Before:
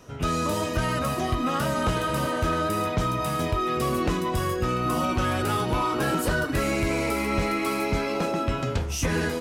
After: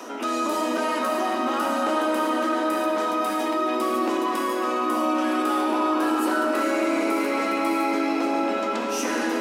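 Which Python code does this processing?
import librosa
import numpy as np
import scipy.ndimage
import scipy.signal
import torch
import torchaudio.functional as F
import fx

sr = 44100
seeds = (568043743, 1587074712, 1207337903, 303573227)

y = scipy.signal.sosfilt(scipy.signal.cheby1(6, 6, 220.0, 'highpass', fs=sr, output='sos'), x)
y = fx.rev_freeverb(y, sr, rt60_s=4.5, hf_ratio=0.65, predelay_ms=25, drr_db=0.0)
y = fx.env_flatten(y, sr, amount_pct=50)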